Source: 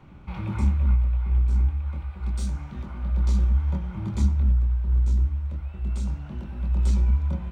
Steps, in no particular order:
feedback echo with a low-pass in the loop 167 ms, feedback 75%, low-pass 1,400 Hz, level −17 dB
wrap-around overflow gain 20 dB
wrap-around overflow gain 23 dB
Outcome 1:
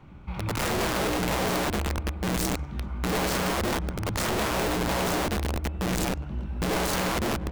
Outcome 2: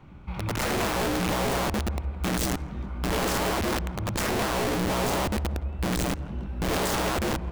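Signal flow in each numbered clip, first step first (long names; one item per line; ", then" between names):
first wrap-around overflow, then feedback echo with a low-pass in the loop, then second wrap-around overflow
first wrap-around overflow, then second wrap-around overflow, then feedback echo with a low-pass in the loop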